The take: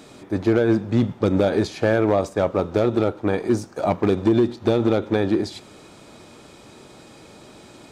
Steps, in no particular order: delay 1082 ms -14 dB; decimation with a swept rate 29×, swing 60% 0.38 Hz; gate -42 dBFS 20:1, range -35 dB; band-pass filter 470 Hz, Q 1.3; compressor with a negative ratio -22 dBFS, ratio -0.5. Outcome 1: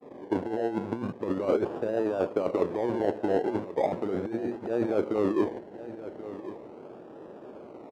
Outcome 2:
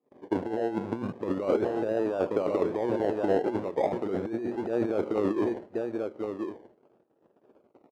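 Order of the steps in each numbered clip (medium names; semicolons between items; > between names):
compressor with a negative ratio > decimation with a swept rate > delay > gate > band-pass filter; decimation with a swept rate > gate > delay > compressor with a negative ratio > band-pass filter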